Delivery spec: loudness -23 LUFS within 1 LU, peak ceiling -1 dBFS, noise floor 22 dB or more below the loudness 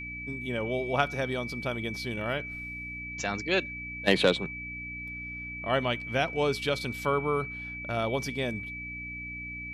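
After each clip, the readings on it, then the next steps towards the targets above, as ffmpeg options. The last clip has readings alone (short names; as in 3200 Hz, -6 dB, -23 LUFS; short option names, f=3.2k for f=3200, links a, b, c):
hum 60 Hz; harmonics up to 300 Hz; hum level -42 dBFS; steady tone 2300 Hz; tone level -37 dBFS; loudness -30.5 LUFS; peak -10.5 dBFS; loudness target -23.0 LUFS
-> -af "bandreject=f=60:t=h:w=4,bandreject=f=120:t=h:w=4,bandreject=f=180:t=h:w=4,bandreject=f=240:t=h:w=4,bandreject=f=300:t=h:w=4"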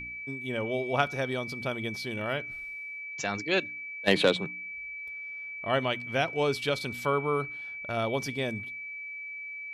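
hum none; steady tone 2300 Hz; tone level -37 dBFS
-> -af "bandreject=f=2.3k:w=30"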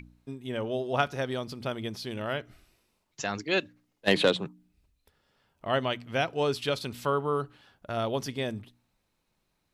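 steady tone none; loudness -30.5 LUFS; peak -10.5 dBFS; loudness target -23.0 LUFS
-> -af "volume=7.5dB"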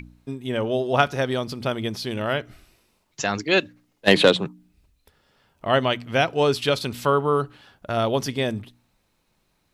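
loudness -23.0 LUFS; peak -3.0 dBFS; noise floor -69 dBFS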